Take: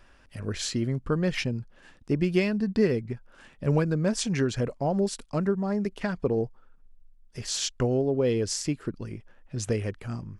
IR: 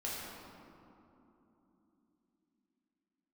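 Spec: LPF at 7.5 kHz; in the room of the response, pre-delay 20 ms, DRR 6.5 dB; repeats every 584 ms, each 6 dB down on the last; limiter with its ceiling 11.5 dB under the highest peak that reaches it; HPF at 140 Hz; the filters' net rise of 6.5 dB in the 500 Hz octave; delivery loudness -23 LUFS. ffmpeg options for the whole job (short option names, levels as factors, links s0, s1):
-filter_complex "[0:a]highpass=140,lowpass=7500,equalizer=f=500:t=o:g=8,alimiter=limit=0.119:level=0:latency=1,aecho=1:1:584|1168|1752|2336|2920|3504:0.501|0.251|0.125|0.0626|0.0313|0.0157,asplit=2[s0][s1];[1:a]atrim=start_sample=2205,adelay=20[s2];[s1][s2]afir=irnorm=-1:irlink=0,volume=0.335[s3];[s0][s3]amix=inputs=2:normalize=0,volume=1.58"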